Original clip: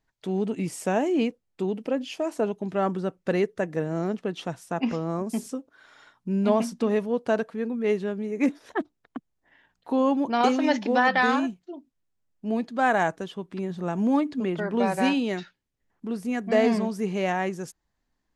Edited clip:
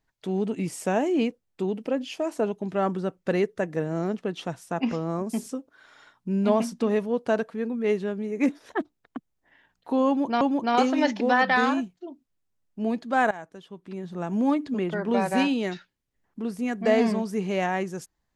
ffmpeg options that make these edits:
-filter_complex "[0:a]asplit=3[a][b][c];[a]atrim=end=10.412[d];[b]atrim=start=10.068:end=12.97,asetpts=PTS-STARTPTS,afade=t=out:st=2.898:d=0.004:c=hsin:silence=0.11885[e];[c]atrim=start=12.97,asetpts=PTS-STARTPTS,afade=t=in:d=1.26:silence=0.11885[f];[e][f]concat=n=2:v=0:a=1[g];[d][g]acrossfade=d=0.004:c1=hsin:c2=hsin"

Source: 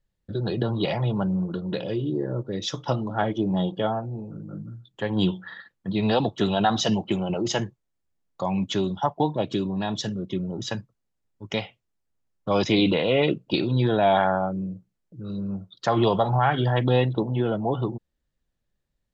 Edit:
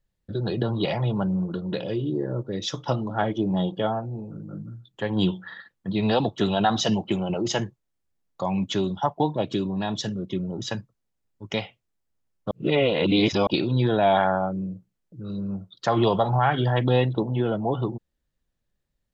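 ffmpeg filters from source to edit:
-filter_complex "[0:a]asplit=3[a][b][c];[a]atrim=end=12.512[d];[b]atrim=start=12.508:end=13.472,asetpts=PTS-STARTPTS,areverse[e];[c]atrim=start=13.468[f];[d][e]acrossfade=d=0.004:c1=hsin:c2=hsin[g];[g][f]acrossfade=d=0.004:c1=hsin:c2=hsin"

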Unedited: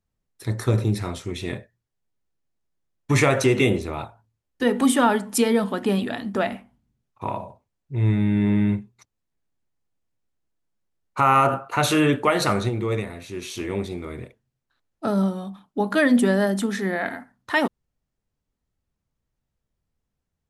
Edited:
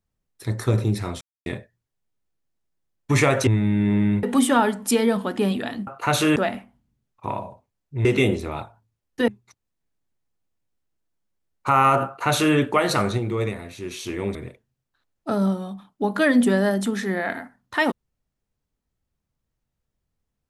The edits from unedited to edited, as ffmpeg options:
-filter_complex "[0:a]asplit=10[a][b][c][d][e][f][g][h][i][j];[a]atrim=end=1.21,asetpts=PTS-STARTPTS,afade=t=out:st=1.206:d=0.004:c=hsin[k];[b]atrim=start=1.21:end=1.46,asetpts=PTS-STARTPTS,volume=0[l];[c]atrim=start=1.46:end=3.472,asetpts=PTS-STARTPTS,afade=t=in:d=0.004:c=hsin[m];[d]atrim=start=8.028:end=8.792[n];[e]atrim=start=4.698:end=6.342[o];[f]atrim=start=11.568:end=12.062[p];[g]atrim=start=6.338:end=8.032[q];[h]atrim=start=3.468:end=4.702[r];[i]atrim=start=8.788:end=13.862[s];[j]atrim=start=14.108[t];[k][l][m]concat=n=3:v=0:a=1[u];[u][n]acrossfade=d=0.004:c1=hsin:c2=hsin[v];[v][o]acrossfade=d=0.004:c1=hsin:c2=hsin[w];[w][p]acrossfade=d=0.004:c1=hsin:c2=hsin[x];[x][q]acrossfade=d=0.004:c1=hsin:c2=hsin[y];[y][r]acrossfade=d=0.004:c1=hsin:c2=hsin[z];[z][s]acrossfade=d=0.004:c1=hsin:c2=hsin[aa];[aa][t]acrossfade=d=0.004:c1=hsin:c2=hsin"

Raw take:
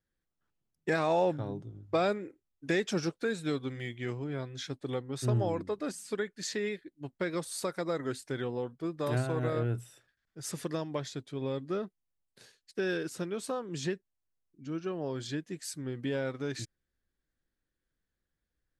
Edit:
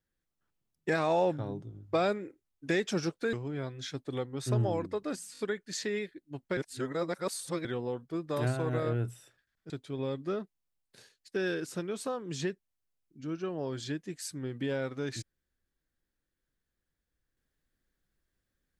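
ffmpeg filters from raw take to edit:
-filter_complex "[0:a]asplit=8[a][b][c][d][e][f][g][h];[a]atrim=end=3.332[i];[b]atrim=start=4.088:end=6.112[j];[c]atrim=start=6.088:end=6.112[k];[d]atrim=start=6.088:end=6.112[l];[e]atrim=start=6.088:end=7.272[m];[f]atrim=start=7.268:end=8.352,asetpts=PTS-STARTPTS,areverse[n];[g]atrim=start=8.348:end=10.402[o];[h]atrim=start=11.128[p];[i][j]acrossfade=d=0.004:c1=hsin:c2=hsin[q];[q][k]acrossfade=d=0.004:c1=hsin:c2=hsin[r];[r][l]acrossfade=d=0.004:c1=hsin:c2=hsin[s];[s][m]acrossfade=d=0.004:c1=hsin:c2=hsin[t];[t][n]acrossfade=d=0.004:c1=hsin:c2=hsin[u];[u][o]acrossfade=d=0.004:c1=hsin:c2=hsin[v];[v][p]acrossfade=d=0.004:c1=hsin:c2=hsin"

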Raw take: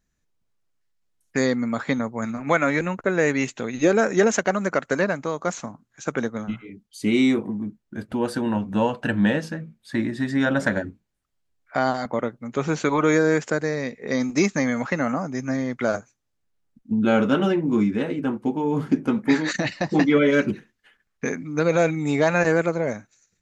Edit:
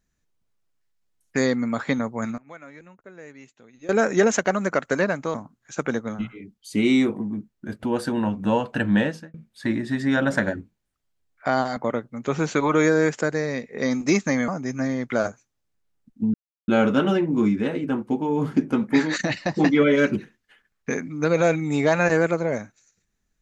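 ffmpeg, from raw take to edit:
-filter_complex "[0:a]asplit=7[a][b][c][d][e][f][g];[a]atrim=end=2.38,asetpts=PTS-STARTPTS,afade=t=out:st=2.23:d=0.15:c=log:silence=0.0749894[h];[b]atrim=start=2.38:end=3.89,asetpts=PTS-STARTPTS,volume=-22.5dB[i];[c]atrim=start=3.89:end=5.342,asetpts=PTS-STARTPTS,afade=t=in:d=0.15:c=log:silence=0.0749894[j];[d]atrim=start=5.628:end=9.63,asetpts=PTS-STARTPTS,afade=t=out:st=3.682:d=0.32[k];[e]atrim=start=9.63:end=14.772,asetpts=PTS-STARTPTS,afade=t=in:d=0.004:c=hsin[l];[f]atrim=start=15.168:end=17.03,asetpts=PTS-STARTPTS,afade=t=out:st=1.858:d=0.004:c=hsin,apad=pad_dur=0.34[m];[g]atrim=start=17.03,asetpts=PTS-STARTPTS,afade=t=in:d=0.004:c=hsin[n];[h][i][j]concat=n=3:v=0:a=1[o];[k][l]concat=n=2:v=0:a=1[p];[o][p]acrossfade=d=0.004:c1=hsin:c2=hsin[q];[m][n]concat=n=2:v=0:a=1[r];[q][r]acrossfade=d=0.004:c1=hsin:c2=hsin"

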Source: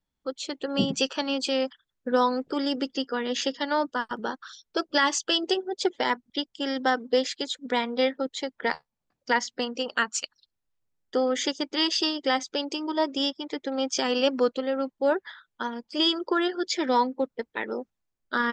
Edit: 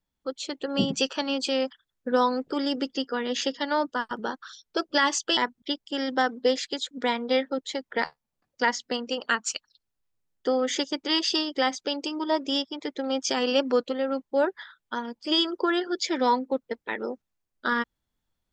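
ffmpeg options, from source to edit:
-filter_complex "[0:a]asplit=2[a][b];[a]atrim=end=5.372[c];[b]atrim=start=6.048[d];[c][d]acrossfade=d=0.004:c1=hsin:c2=hsin"

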